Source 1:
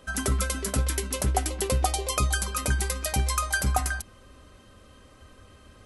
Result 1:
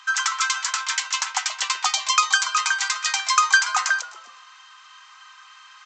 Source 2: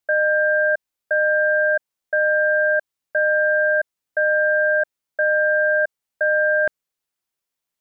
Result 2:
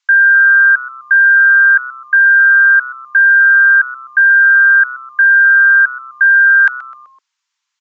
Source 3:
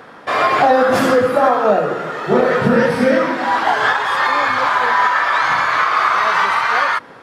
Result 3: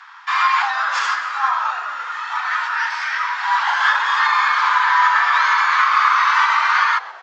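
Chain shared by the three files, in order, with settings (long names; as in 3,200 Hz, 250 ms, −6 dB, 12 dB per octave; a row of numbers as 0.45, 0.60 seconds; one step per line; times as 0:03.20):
Butterworth high-pass 890 Hz 72 dB per octave
echo with shifted repeats 127 ms, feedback 45%, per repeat −130 Hz, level −18 dB
downsampling to 16,000 Hz
normalise the peak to −3 dBFS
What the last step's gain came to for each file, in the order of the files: +11.5, +13.5, +0.5 decibels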